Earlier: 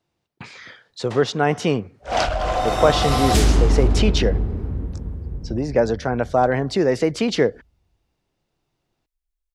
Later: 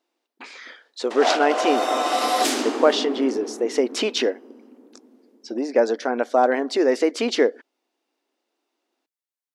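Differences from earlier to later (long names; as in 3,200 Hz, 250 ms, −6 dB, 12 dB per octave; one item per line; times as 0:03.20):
background: entry −0.90 s
master: add linear-phase brick-wall high-pass 230 Hz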